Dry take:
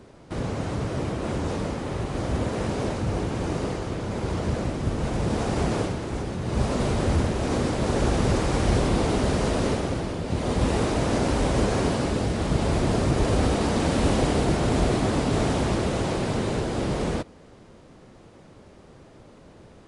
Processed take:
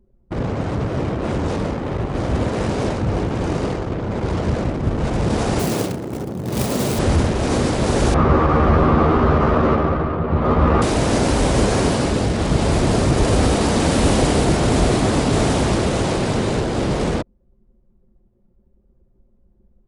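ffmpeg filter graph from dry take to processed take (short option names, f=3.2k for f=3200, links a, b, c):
-filter_complex "[0:a]asettb=1/sr,asplit=3[a][b][c];[a]atrim=end=5.594[d];[b]atrim=start=5.59:end=6.99,asetpts=PTS-STARTPTS,afade=t=in:d=0.004:c=qsin,afade=t=out:st=1.396:d=0.004:c=qsin,equalizer=f=1.3k:t=o:w=2.3:g=-4,acrusher=bits=4:mode=log:mix=0:aa=0.000001,highpass=120[e];[c]atrim=start=6.986[f];[d][e]acrossfade=d=0.004:c1=hsin:c2=qsin[g];[g][f]acrossfade=d=0.004:c1=qsin:c2=hsin,asettb=1/sr,asplit=3[h][i][j];[h]atrim=end=8.144[k];[i]atrim=start=8.14:end=10.82,asetpts=PTS-STARTPTS,afade=t=in:d=0.004:c=qsin,afade=t=out:st=2.676:d=0.004:c=qsin,lowpass=1.8k,equalizer=f=1.2k:t=o:w=0.31:g=12.5,asplit=2[l][m];[m]adelay=13,volume=-2.5dB[n];[l][n]amix=inputs=2:normalize=0,atrim=end_sample=118188[o];[j]atrim=start=10.816[p];[k][o]acrossfade=d=0.004:c1=hsin:c2=qsin[q];[q][p]acrossfade=d=0.004:c1=qsin:c2=hsin,highshelf=f=6.5k:g=7.5,acontrast=57,anlmdn=158"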